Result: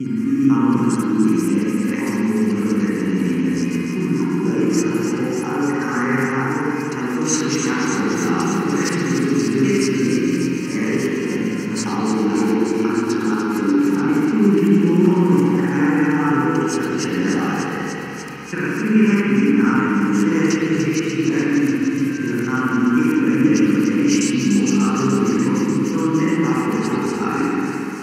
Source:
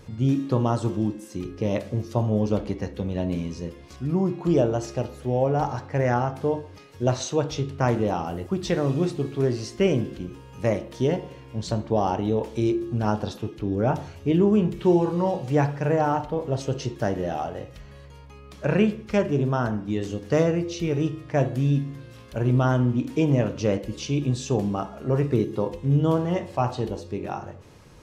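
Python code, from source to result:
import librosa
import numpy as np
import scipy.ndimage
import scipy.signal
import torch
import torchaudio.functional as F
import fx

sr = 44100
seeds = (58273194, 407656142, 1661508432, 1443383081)

p1 = fx.local_reverse(x, sr, ms=247.0)
p2 = fx.low_shelf(p1, sr, hz=360.0, db=6.0)
p3 = fx.over_compress(p2, sr, threshold_db=-27.0, ratio=-1.0)
p4 = p2 + (p3 * librosa.db_to_amplitude(1.0))
p5 = scipy.signal.sosfilt(scipy.signal.butter(4, 250.0, 'highpass', fs=sr, output='sos'), p4)
p6 = fx.peak_eq(p5, sr, hz=670.0, db=-13.0, octaves=1.9)
p7 = fx.fixed_phaser(p6, sr, hz=1500.0, stages=4)
p8 = p7 + fx.echo_wet_highpass(p7, sr, ms=295, feedback_pct=83, hz=3300.0, wet_db=-7.0, dry=0)
p9 = fx.rev_spring(p8, sr, rt60_s=3.0, pass_ms=(45, 59), chirp_ms=70, drr_db=-7.5)
y = p9 * librosa.db_to_amplitude(6.5)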